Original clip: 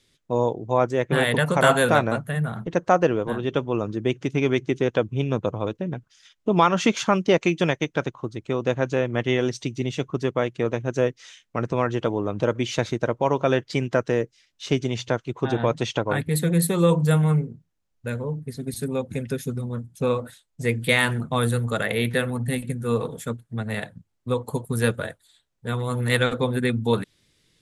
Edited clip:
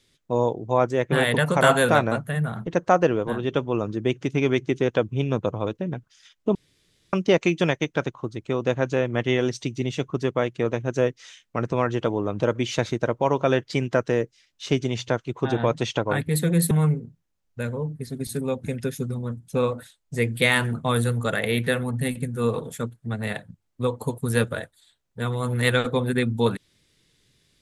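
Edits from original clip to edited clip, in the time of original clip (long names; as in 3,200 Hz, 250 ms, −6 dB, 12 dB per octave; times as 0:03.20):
0:06.55–0:07.13: fill with room tone
0:16.71–0:17.18: remove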